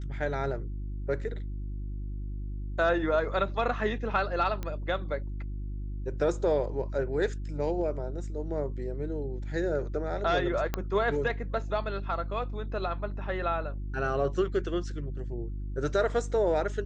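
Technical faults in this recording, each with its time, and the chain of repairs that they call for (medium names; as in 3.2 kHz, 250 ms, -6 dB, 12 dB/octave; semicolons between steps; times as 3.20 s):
hum 50 Hz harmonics 7 -35 dBFS
4.63 s: pop -21 dBFS
10.74 s: pop -14 dBFS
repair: de-click; de-hum 50 Hz, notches 7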